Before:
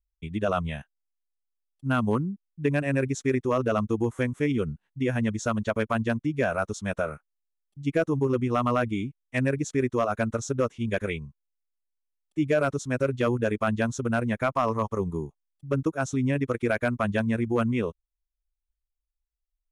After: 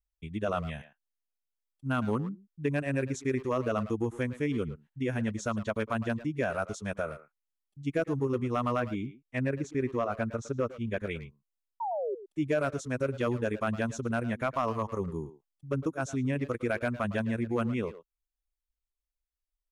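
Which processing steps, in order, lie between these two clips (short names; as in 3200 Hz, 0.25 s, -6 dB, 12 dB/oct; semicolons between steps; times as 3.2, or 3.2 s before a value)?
8.8–11.11 LPF 3000 Hz 6 dB/oct; 11.8–12.15 painted sound fall 370–970 Hz -27 dBFS; speakerphone echo 0.11 s, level -12 dB; gain -5 dB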